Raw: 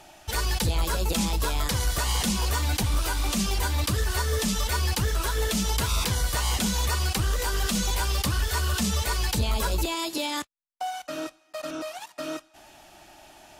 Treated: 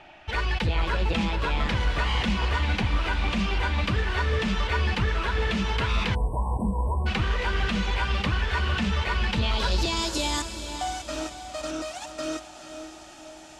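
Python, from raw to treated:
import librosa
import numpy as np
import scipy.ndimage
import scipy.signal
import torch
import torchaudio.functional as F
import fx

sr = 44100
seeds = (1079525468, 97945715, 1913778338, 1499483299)

y = fx.echo_diffused(x, sr, ms=475, feedback_pct=53, wet_db=-9.0)
y = fx.filter_sweep_lowpass(y, sr, from_hz=2500.0, to_hz=7500.0, start_s=9.28, end_s=10.17, q=1.8)
y = fx.spec_erase(y, sr, start_s=6.15, length_s=0.91, low_hz=1100.0, high_hz=7800.0)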